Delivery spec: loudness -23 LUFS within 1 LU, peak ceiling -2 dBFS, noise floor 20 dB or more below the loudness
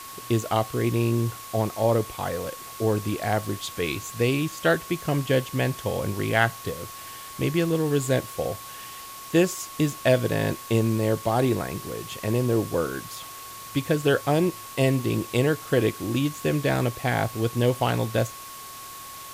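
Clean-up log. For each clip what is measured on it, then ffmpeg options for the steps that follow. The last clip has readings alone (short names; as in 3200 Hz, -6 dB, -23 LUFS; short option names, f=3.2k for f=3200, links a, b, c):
steady tone 1100 Hz; tone level -41 dBFS; noise floor -40 dBFS; noise floor target -46 dBFS; loudness -25.5 LUFS; peak -5.5 dBFS; loudness target -23.0 LUFS
-> -af "bandreject=f=1.1k:w=30"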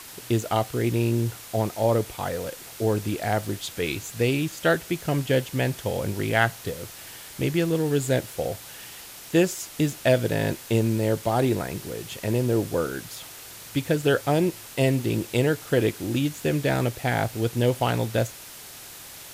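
steady tone none; noise floor -43 dBFS; noise floor target -46 dBFS
-> -af "afftdn=nr=6:nf=-43"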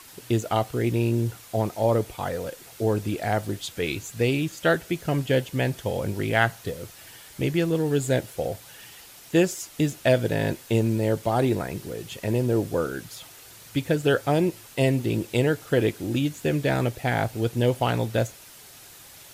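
noise floor -47 dBFS; loudness -25.5 LUFS; peak -6.0 dBFS; loudness target -23.0 LUFS
-> -af "volume=2.5dB"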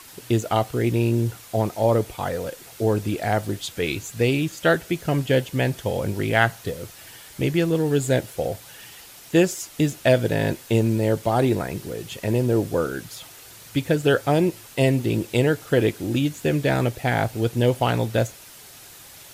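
loudness -23.0 LUFS; peak -3.5 dBFS; noise floor -45 dBFS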